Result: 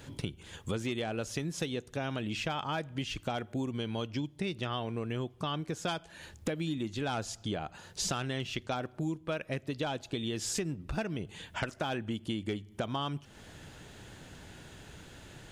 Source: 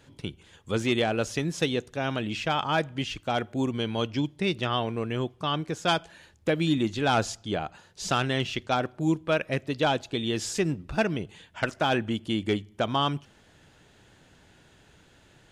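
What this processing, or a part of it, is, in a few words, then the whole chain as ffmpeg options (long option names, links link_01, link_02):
ASMR close-microphone chain: -af "lowshelf=frequency=230:gain=3.5,acompressor=threshold=-39dB:ratio=5,highshelf=frequency=9100:gain=6.5,volume=5.5dB"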